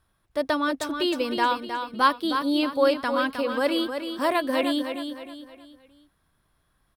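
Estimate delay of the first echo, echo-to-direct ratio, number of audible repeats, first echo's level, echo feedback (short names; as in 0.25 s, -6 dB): 0.312 s, -7.0 dB, 4, -7.5 dB, 39%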